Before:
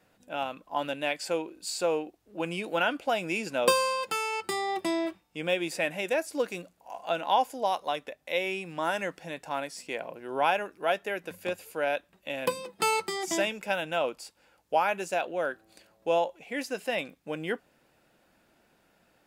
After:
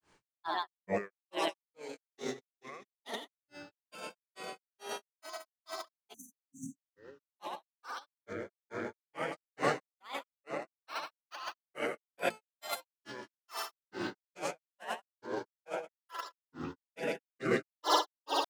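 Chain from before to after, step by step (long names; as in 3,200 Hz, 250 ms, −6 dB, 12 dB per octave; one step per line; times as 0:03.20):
wrong playback speed 24 fps film run at 25 fps
noise reduction from a noise print of the clip's start 18 dB
on a send: echo that builds up and dies away 113 ms, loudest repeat 5, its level −8 dB
on the sum: compressor whose output falls as the input rises −36 dBFS, ratio −0.5
mains-hum notches 60/120/180/240 Hz
granular cloud 240 ms, grains 2.3 per second, spray 11 ms, pitch spread up and down by 12 semitones
time-frequency box erased 0:06.14–0:06.87, 280–5,800 Hz
one half of a high-frequency compander encoder only
level +4 dB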